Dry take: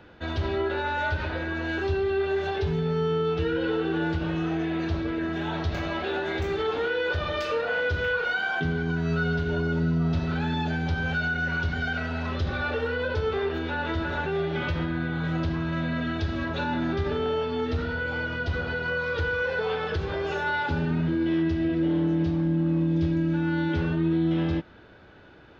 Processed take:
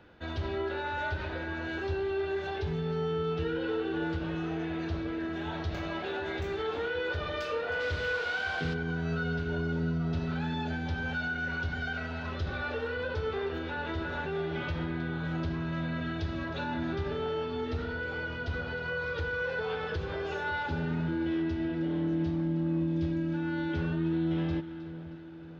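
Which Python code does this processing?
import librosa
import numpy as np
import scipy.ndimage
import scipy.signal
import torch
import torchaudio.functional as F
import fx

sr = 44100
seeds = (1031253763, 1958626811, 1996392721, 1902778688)

y = fx.echo_split(x, sr, split_hz=990.0, low_ms=556, high_ms=314, feedback_pct=52, wet_db=-13.5)
y = fx.dmg_noise_band(y, sr, seeds[0], low_hz=400.0, high_hz=4300.0, level_db=-39.0, at=(7.79, 8.73), fade=0.02)
y = y * librosa.db_to_amplitude(-6.0)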